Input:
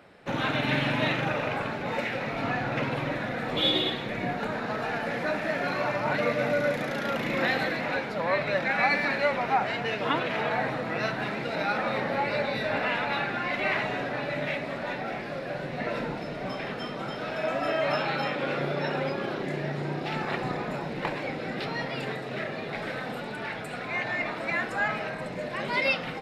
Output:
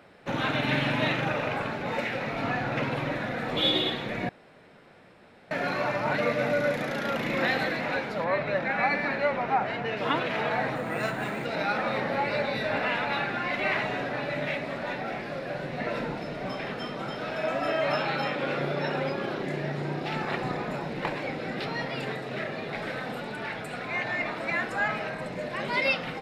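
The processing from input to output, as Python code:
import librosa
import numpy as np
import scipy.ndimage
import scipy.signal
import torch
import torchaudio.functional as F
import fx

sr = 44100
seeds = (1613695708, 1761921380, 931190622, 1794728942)

y = fx.high_shelf(x, sr, hz=3700.0, db=-11.5, at=(8.24, 9.97))
y = fx.resample_linear(y, sr, factor=4, at=(10.75, 11.46))
y = fx.edit(y, sr, fx.room_tone_fill(start_s=4.29, length_s=1.22), tone=tone)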